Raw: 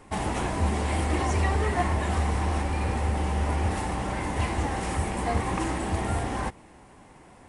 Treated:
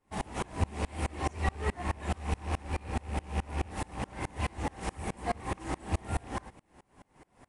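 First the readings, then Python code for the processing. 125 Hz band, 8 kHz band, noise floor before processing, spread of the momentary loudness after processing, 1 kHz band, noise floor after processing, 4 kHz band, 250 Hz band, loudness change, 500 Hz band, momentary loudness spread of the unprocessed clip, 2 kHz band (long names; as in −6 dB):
−8.5 dB, −8.5 dB, −52 dBFS, 5 LU, −8.0 dB, −71 dBFS, −7.5 dB, −8.5 dB, −8.0 dB, −8.0 dB, 5 LU, −7.5 dB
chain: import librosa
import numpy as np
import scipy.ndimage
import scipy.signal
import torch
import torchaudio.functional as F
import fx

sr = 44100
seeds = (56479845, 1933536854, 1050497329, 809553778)

y = fx.rattle_buzz(x, sr, strikes_db=-26.0, level_db=-29.0)
y = fx.tremolo_decay(y, sr, direction='swelling', hz=4.7, depth_db=30)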